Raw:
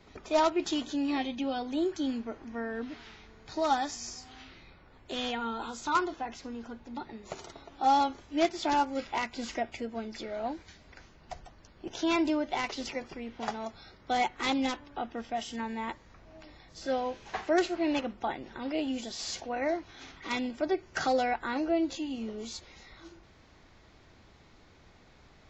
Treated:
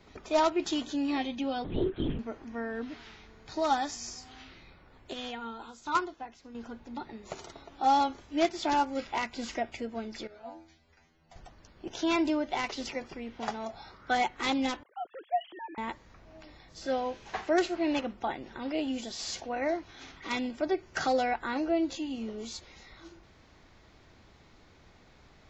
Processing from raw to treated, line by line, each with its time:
0:01.64–0:02.19: linear-prediction vocoder at 8 kHz whisper
0:05.13–0:06.55: expander for the loud parts, over −45 dBFS
0:10.27–0:11.36: stiff-string resonator 80 Hz, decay 0.44 s, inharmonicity 0.002
0:13.68–0:14.14: parametric band 630 Hz → 1,700 Hz +15 dB 0.44 octaves
0:14.83–0:15.78: three sine waves on the formant tracks

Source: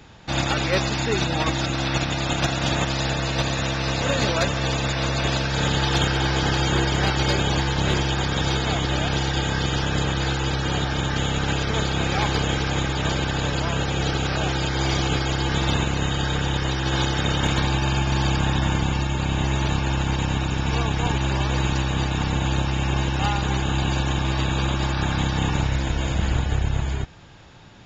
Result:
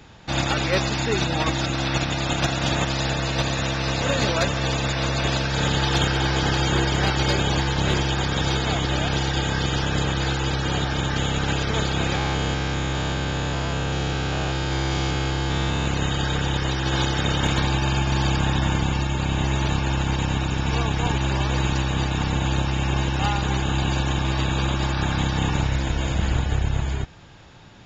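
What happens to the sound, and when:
0:12.15–0:15.86: spectrum averaged block by block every 200 ms

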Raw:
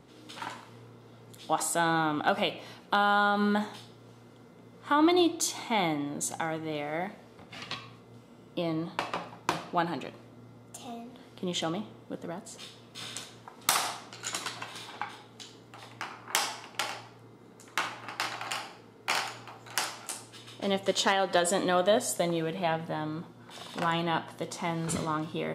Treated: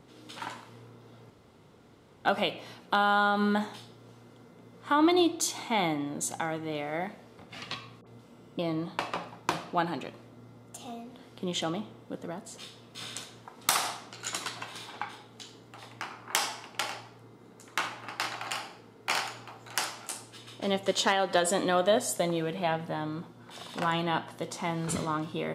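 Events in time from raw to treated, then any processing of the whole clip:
0:01.30–0:02.25: fill with room tone
0:08.01–0:08.59: all-pass dispersion highs, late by 58 ms, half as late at 1,200 Hz

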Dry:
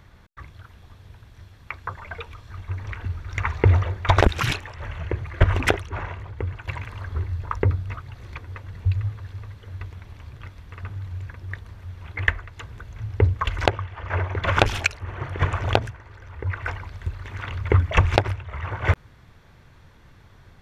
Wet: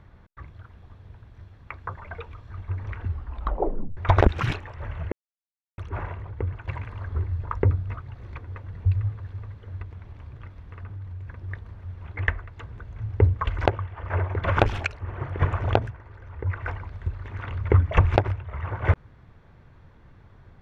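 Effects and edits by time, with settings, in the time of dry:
0:03.07: tape stop 0.90 s
0:05.12–0:05.78: silence
0:09.82–0:11.28: downward compressor 2.5 to 1, threshold −35 dBFS
whole clip: low-pass filter 1,200 Hz 6 dB per octave

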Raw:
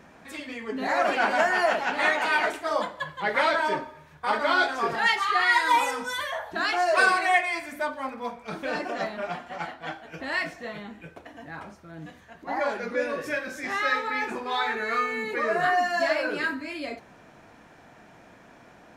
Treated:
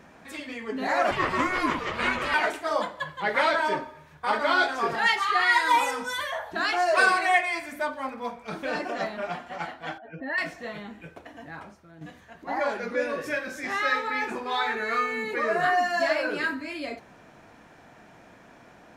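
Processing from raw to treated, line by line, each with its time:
0:01.11–0:02.34: ring modulation 370 Hz
0:09.98–0:10.38: expanding power law on the bin magnitudes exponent 2
0:11.41–0:12.01: fade out, to −9 dB

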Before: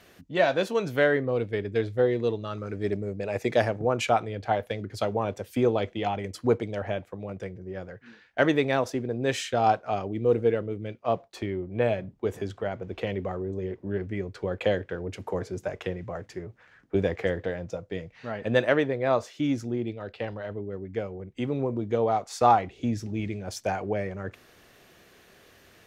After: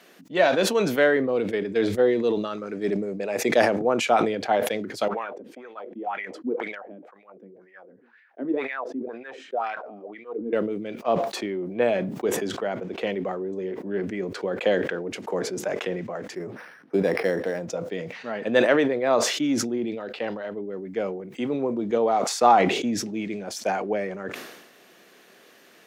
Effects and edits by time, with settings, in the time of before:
0:05.08–0:10.53: LFO wah 2 Hz 240–2,100 Hz, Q 5
0:16.35–0:17.68: linearly interpolated sample-rate reduction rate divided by 6×
whole clip: high-pass filter 190 Hz 24 dB per octave; level that may fall only so fast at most 53 dB per second; level +2.5 dB

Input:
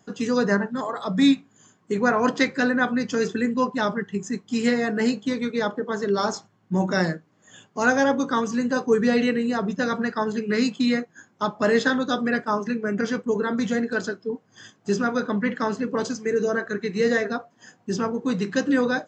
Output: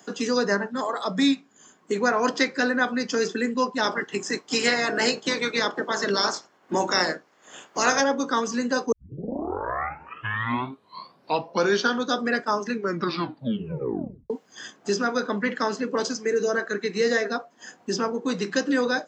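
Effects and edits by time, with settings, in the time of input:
0:03.83–0:08.00: ceiling on every frequency bin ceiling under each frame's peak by 16 dB
0:08.92: tape start 3.22 s
0:12.72: tape stop 1.58 s
whole clip: high-pass filter 270 Hz 12 dB per octave; dynamic equaliser 5,200 Hz, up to +7 dB, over −51 dBFS, Q 2.6; multiband upward and downward compressor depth 40%

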